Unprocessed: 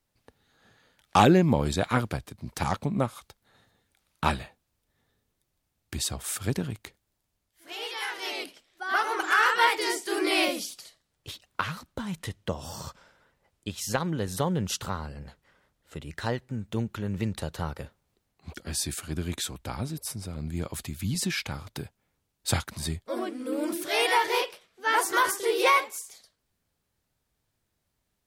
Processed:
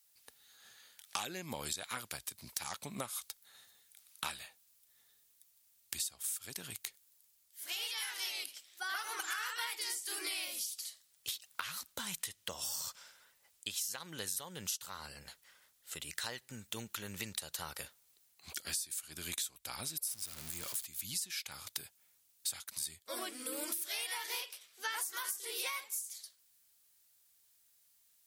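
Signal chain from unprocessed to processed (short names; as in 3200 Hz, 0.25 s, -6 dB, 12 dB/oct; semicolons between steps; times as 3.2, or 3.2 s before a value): 20.11–20.85 zero-crossing step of -35 dBFS; pre-emphasis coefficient 0.97; compressor 12:1, threshold -48 dBFS, peak gain reduction 22.5 dB; gain +12 dB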